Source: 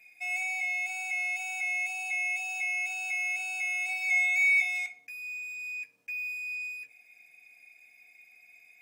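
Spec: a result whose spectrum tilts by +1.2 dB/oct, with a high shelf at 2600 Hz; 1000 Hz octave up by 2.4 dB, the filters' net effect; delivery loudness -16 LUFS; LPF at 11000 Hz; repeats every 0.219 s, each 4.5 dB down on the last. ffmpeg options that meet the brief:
-af "lowpass=11k,equalizer=f=1k:t=o:g=5,highshelf=f=2.6k:g=-5.5,aecho=1:1:219|438|657|876|1095|1314|1533|1752|1971:0.596|0.357|0.214|0.129|0.0772|0.0463|0.0278|0.0167|0.01,volume=14dB"

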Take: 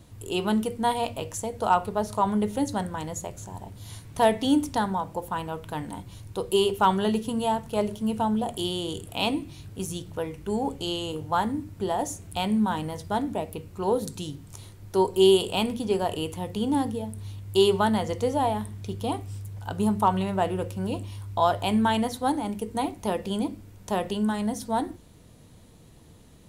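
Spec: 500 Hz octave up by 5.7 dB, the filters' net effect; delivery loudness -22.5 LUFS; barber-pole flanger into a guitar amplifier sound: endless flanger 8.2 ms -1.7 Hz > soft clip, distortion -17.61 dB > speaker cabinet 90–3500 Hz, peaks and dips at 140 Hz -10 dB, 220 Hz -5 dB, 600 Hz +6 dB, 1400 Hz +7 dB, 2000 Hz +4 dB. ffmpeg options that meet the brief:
-filter_complex "[0:a]equalizer=f=500:t=o:g=5.5,asplit=2[a][b];[b]adelay=8.2,afreqshift=-1.7[c];[a][c]amix=inputs=2:normalize=1,asoftclip=threshold=-12dB,highpass=90,equalizer=f=140:t=q:w=4:g=-10,equalizer=f=220:t=q:w=4:g=-5,equalizer=f=600:t=q:w=4:g=6,equalizer=f=1.4k:t=q:w=4:g=7,equalizer=f=2k:t=q:w=4:g=4,lowpass=f=3.5k:w=0.5412,lowpass=f=3.5k:w=1.3066,volume=5dB"

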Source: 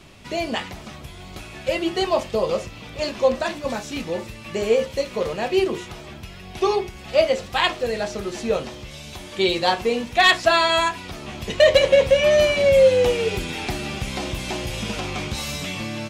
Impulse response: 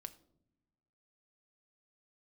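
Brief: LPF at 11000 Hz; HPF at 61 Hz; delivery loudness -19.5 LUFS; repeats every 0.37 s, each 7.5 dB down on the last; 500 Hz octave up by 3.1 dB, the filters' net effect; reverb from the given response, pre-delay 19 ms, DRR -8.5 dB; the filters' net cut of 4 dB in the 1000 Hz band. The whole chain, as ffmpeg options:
-filter_complex "[0:a]highpass=61,lowpass=11k,equalizer=f=500:t=o:g=6,equalizer=f=1k:t=o:g=-8.5,aecho=1:1:370|740|1110|1480|1850:0.422|0.177|0.0744|0.0312|0.0131,asplit=2[a][b];[1:a]atrim=start_sample=2205,adelay=19[c];[b][c]afir=irnorm=-1:irlink=0,volume=13.5dB[d];[a][d]amix=inputs=2:normalize=0,volume=-9.5dB"

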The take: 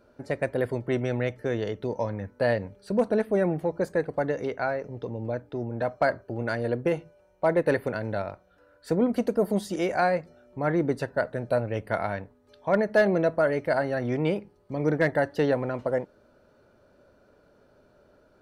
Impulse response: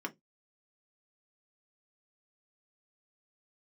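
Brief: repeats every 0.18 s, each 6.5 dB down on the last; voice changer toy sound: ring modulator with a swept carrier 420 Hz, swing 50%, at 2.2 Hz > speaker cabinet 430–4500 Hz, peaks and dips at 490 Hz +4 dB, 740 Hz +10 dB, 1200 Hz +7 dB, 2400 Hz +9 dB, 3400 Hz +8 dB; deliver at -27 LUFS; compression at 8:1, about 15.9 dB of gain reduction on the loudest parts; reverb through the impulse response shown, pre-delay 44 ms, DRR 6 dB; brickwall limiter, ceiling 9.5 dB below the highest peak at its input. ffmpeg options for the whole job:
-filter_complex "[0:a]acompressor=threshold=-35dB:ratio=8,alimiter=level_in=6dB:limit=-24dB:level=0:latency=1,volume=-6dB,aecho=1:1:180|360|540|720|900|1080:0.473|0.222|0.105|0.0491|0.0231|0.0109,asplit=2[a][b];[1:a]atrim=start_sample=2205,adelay=44[c];[b][c]afir=irnorm=-1:irlink=0,volume=-8dB[d];[a][d]amix=inputs=2:normalize=0,aeval=exprs='val(0)*sin(2*PI*420*n/s+420*0.5/2.2*sin(2*PI*2.2*n/s))':c=same,highpass=430,equalizer=f=490:t=q:w=4:g=4,equalizer=f=740:t=q:w=4:g=10,equalizer=f=1.2k:t=q:w=4:g=7,equalizer=f=2.4k:t=q:w=4:g=9,equalizer=f=3.4k:t=q:w=4:g=8,lowpass=f=4.5k:w=0.5412,lowpass=f=4.5k:w=1.3066,volume=12dB"

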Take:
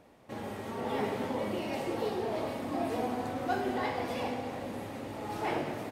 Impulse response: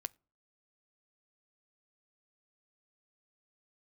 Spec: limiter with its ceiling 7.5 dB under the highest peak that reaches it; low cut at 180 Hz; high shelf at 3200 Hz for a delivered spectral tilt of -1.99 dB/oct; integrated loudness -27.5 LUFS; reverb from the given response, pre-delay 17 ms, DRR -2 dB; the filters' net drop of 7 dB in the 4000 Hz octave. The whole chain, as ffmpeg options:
-filter_complex "[0:a]highpass=180,highshelf=f=3.2k:g=-4.5,equalizer=f=4k:t=o:g=-6.5,alimiter=level_in=3dB:limit=-24dB:level=0:latency=1,volume=-3dB,asplit=2[a][b];[1:a]atrim=start_sample=2205,adelay=17[c];[b][c]afir=irnorm=-1:irlink=0,volume=4.5dB[d];[a][d]amix=inputs=2:normalize=0,volume=5.5dB"

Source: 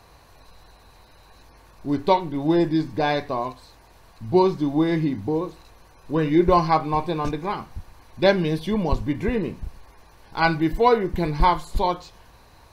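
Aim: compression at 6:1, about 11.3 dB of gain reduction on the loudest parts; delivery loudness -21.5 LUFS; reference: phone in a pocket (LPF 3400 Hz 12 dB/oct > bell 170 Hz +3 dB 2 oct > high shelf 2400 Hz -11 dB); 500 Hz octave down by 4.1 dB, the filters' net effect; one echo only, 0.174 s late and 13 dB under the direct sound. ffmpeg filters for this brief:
-af "equalizer=f=500:t=o:g=-6.5,acompressor=threshold=-27dB:ratio=6,lowpass=3.4k,equalizer=f=170:t=o:w=2:g=3,highshelf=f=2.4k:g=-11,aecho=1:1:174:0.224,volume=10dB"

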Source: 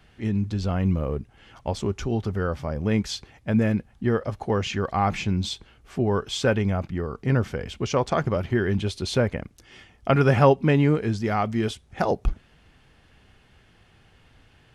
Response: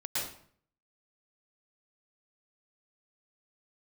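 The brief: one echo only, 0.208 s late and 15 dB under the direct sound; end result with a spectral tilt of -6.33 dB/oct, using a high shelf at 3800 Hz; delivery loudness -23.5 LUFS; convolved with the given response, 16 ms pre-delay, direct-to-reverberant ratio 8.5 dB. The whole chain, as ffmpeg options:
-filter_complex "[0:a]highshelf=f=3.8k:g=-4,aecho=1:1:208:0.178,asplit=2[a][b];[1:a]atrim=start_sample=2205,adelay=16[c];[b][c]afir=irnorm=-1:irlink=0,volume=-14dB[d];[a][d]amix=inputs=2:normalize=0,volume=1dB"

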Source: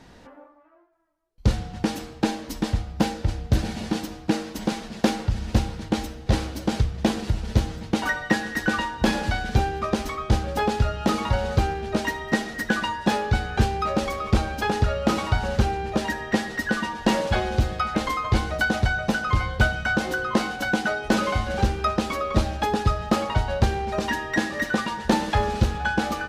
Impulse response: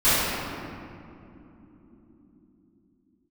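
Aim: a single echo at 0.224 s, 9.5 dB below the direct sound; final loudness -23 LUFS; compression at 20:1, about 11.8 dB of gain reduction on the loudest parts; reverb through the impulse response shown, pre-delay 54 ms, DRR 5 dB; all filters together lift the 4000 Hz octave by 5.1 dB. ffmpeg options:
-filter_complex "[0:a]equalizer=f=4k:t=o:g=6.5,acompressor=threshold=-26dB:ratio=20,aecho=1:1:224:0.335,asplit=2[a][b];[1:a]atrim=start_sample=2205,adelay=54[c];[b][c]afir=irnorm=-1:irlink=0,volume=-26dB[d];[a][d]amix=inputs=2:normalize=0,volume=6.5dB"

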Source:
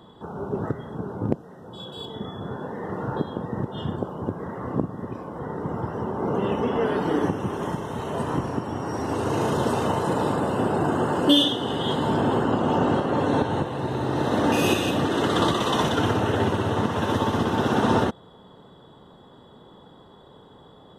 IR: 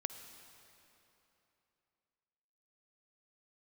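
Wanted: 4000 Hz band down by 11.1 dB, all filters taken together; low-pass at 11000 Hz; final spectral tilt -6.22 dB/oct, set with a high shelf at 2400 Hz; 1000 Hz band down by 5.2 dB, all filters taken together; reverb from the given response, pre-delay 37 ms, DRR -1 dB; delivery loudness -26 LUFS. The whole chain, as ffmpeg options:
-filter_complex "[0:a]lowpass=11k,equalizer=f=1k:t=o:g=-5,highshelf=f=2.4k:g=-7,equalizer=f=4k:t=o:g=-8.5,asplit=2[a][b];[1:a]atrim=start_sample=2205,adelay=37[c];[b][c]afir=irnorm=-1:irlink=0,volume=1.5dB[d];[a][d]amix=inputs=2:normalize=0,volume=-3dB"

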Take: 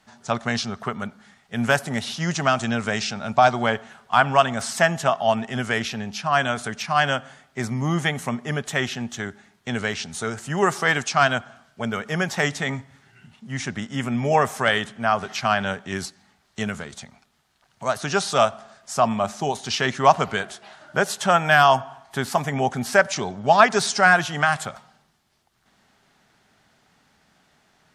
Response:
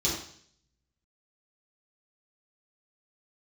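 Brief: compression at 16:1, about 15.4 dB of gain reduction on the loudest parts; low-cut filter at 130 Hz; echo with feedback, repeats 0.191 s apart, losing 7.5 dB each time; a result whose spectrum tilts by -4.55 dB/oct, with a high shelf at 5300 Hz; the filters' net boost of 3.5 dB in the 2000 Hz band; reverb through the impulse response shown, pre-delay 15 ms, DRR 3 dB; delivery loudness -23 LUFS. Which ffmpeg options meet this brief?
-filter_complex "[0:a]highpass=130,equalizer=f=2k:t=o:g=5.5,highshelf=f=5.3k:g=-7,acompressor=threshold=-23dB:ratio=16,aecho=1:1:191|382|573|764|955:0.422|0.177|0.0744|0.0312|0.0131,asplit=2[a][b];[1:a]atrim=start_sample=2205,adelay=15[c];[b][c]afir=irnorm=-1:irlink=0,volume=-11.5dB[d];[a][d]amix=inputs=2:normalize=0,volume=3dB"

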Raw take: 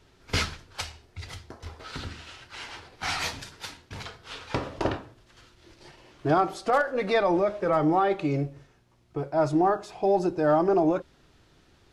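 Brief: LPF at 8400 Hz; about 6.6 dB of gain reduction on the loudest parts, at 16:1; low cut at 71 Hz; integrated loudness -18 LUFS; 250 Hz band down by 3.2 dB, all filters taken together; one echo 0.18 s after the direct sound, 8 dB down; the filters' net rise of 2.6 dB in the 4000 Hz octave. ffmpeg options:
-af "highpass=71,lowpass=8.4k,equalizer=f=250:t=o:g=-5,equalizer=f=4k:t=o:g=3.5,acompressor=threshold=-25dB:ratio=16,aecho=1:1:180:0.398,volume=14.5dB"

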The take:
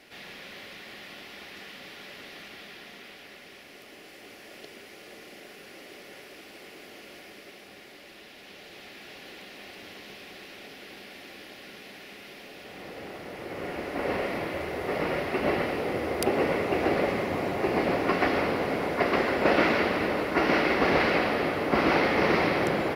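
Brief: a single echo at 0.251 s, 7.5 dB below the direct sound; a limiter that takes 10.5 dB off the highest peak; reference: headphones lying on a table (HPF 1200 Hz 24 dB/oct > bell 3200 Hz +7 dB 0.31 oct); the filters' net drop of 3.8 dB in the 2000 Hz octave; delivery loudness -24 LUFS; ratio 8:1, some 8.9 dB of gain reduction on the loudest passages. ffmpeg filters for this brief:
-af "equalizer=f=2k:t=o:g=-5,acompressor=threshold=-29dB:ratio=8,alimiter=level_in=1dB:limit=-24dB:level=0:latency=1,volume=-1dB,highpass=f=1.2k:w=0.5412,highpass=f=1.2k:w=1.3066,equalizer=f=3.2k:t=o:w=0.31:g=7,aecho=1:1:251:0.422,volume=18.5dB"

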